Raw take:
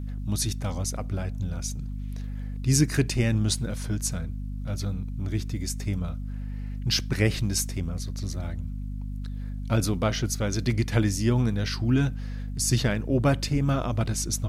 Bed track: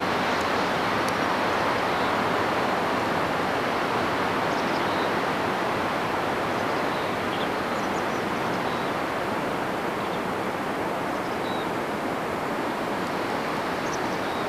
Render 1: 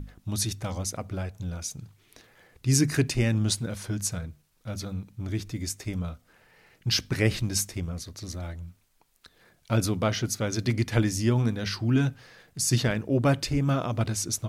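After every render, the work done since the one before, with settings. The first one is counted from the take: hum notches 50/100/150/200/250 Hz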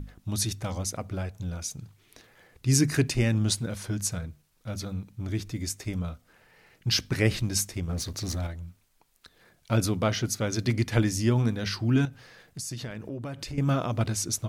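7.89–8.47 s: waveshaping leveller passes 2; 12.05–13.58 s: compression, threshold -33 dBFS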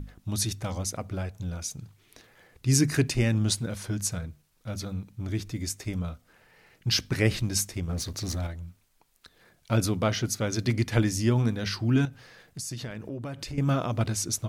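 no audible change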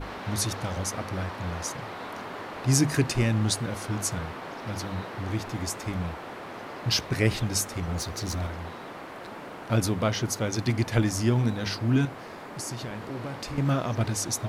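add bed track -13.5 dB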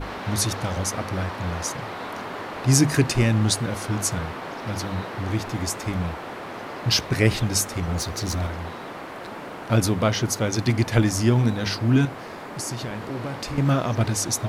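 trim +4.5 dB

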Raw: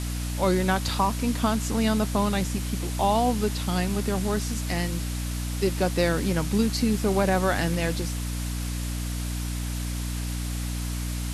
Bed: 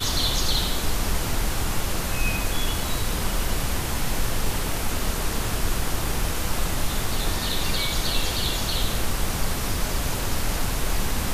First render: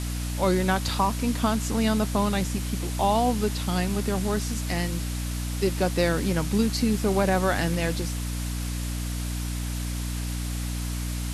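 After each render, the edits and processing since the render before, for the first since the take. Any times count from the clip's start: no audible change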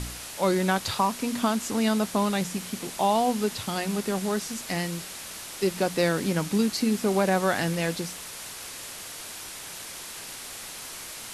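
de-hum 60 Hz, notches 5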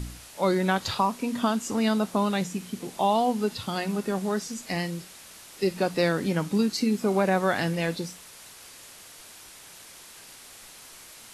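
noise print and reduce 8 dB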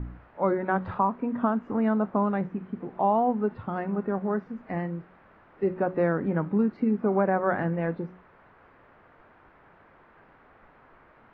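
low-pass 1.6 kHz 24 dB/octave; de-hum 185.1 Hz, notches 3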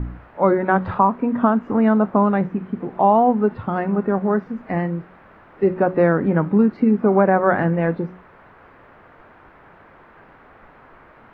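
trim +8.5 dB

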